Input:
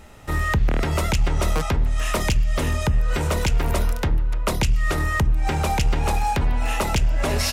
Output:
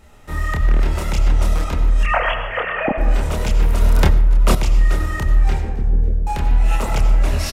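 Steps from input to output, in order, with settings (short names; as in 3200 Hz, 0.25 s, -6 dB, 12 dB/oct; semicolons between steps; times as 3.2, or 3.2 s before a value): 2.03–2.98 sine-wave speech; 5.58–6.27 elliptic low-pass 500 Hz; chorus voices 6, 1.2 Hz, delay 28 ms, depth 3 ms; frequency-shifting echo 0.28 s, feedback 48%, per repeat -69 Hz, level -19 dB; reverb RT60 1.4 s, pre-delay 50 ms, DRR 6 dB; 3.81–4.55 fast leveller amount 100%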